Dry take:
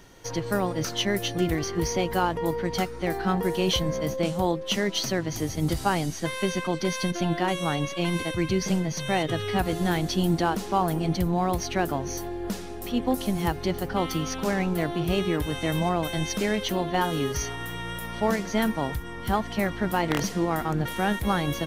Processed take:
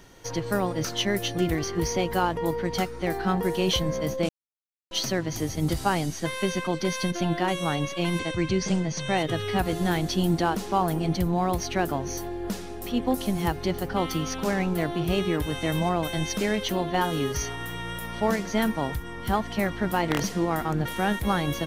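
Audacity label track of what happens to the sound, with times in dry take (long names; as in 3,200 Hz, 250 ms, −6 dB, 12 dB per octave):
4.290000	4.910000	silence
8.190000	9.180000	Butterworth low-pass 9,000 Hz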